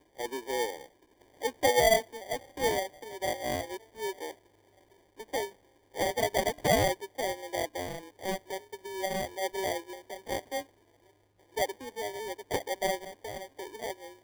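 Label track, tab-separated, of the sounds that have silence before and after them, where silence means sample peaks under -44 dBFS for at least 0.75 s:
5.200000	10.630000	sound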